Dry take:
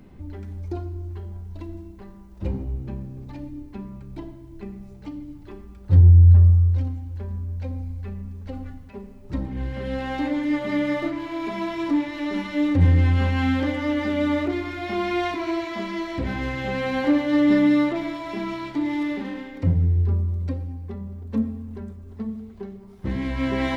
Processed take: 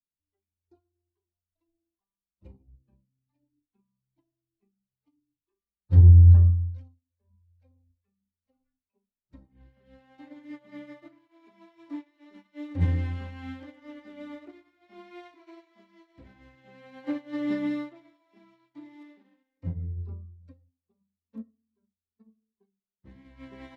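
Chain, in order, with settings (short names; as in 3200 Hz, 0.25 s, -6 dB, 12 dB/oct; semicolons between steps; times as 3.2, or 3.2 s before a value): spectral noise reduction 16 dB; upward expander 2.5:1, over -37 dBFS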